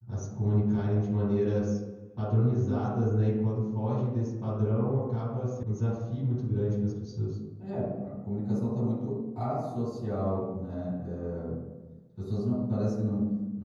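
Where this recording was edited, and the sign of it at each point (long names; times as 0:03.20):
0:05.63: cut off before it has died away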